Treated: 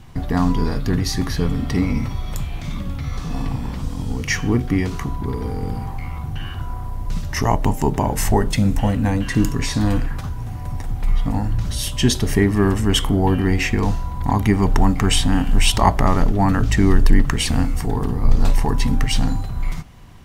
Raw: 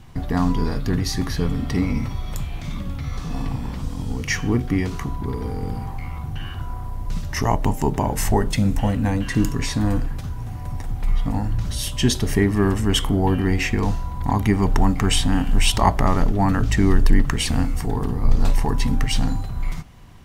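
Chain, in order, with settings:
0:09.73–0:10.28: parametric band 6,300 Hz → 920 Hz +7.5 dB 1.2 octaves
level +2 dB

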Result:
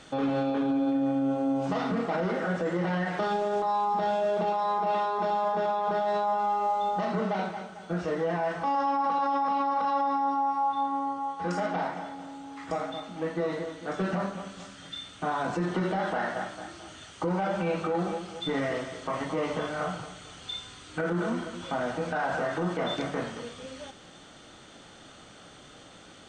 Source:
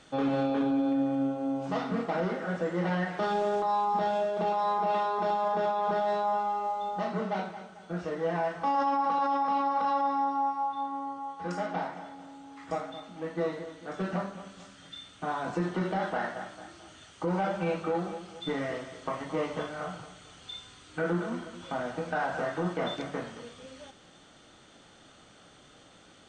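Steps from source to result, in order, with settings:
brickwall limiter −26 dBFS, peak gain reduction 8 dB
level +5.5 dB

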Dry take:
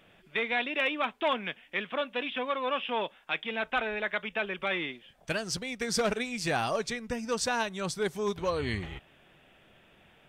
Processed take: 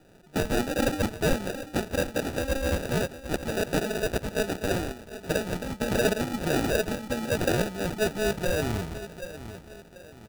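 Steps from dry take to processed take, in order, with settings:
repeating echo 749 ms, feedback 39%, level −13 dB
decimation without filtering 41×
level +4 dB

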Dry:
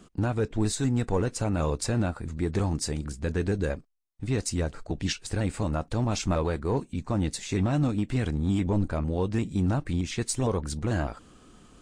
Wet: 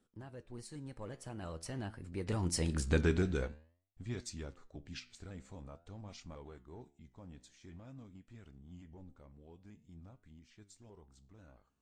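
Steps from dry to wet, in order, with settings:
source passing by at 0:02.87, 36 m/s, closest 6.7 metres
dynamic equaliser 3,200 Hz, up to +4 dB, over −60 dBFS, Q 0.77
flanger 0.48 Hz, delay 7.6 ms, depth 9.9 ms, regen +85%
level +5.5 dB

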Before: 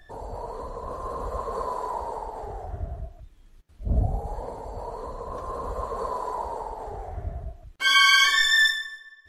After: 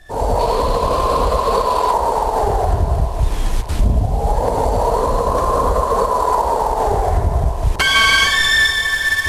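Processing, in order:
variable-slope delta modulation 64 kbit/s
camcorder AGC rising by 66 dB per second
0:00.39–0:01.93: flat-topped bell 3,300 Hz +8 dB 1.3 octaves
on a send: feedback delay with all-pass diffusion 464 ms, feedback 69%, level −15 dB
on the sum: level +5.5 dB

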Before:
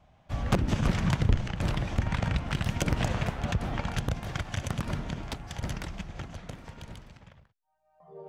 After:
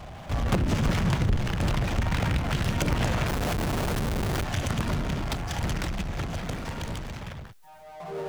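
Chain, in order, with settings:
power curve on the samples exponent 0.5
0:03.27–0:04.44: comparator with hysteresis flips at −26 dBFS
level −4 dB

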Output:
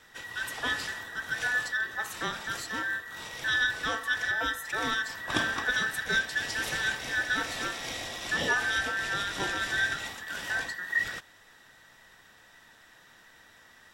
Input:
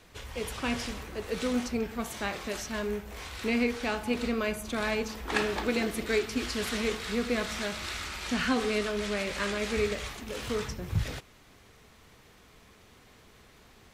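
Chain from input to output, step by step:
frequency inversion band by band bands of 2,000 Hz

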